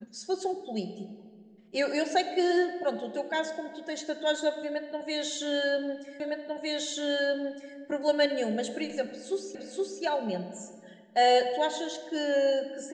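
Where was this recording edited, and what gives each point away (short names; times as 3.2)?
6.2 repeat of the last 1.56 s
9.55 repeat of the last 0.47 s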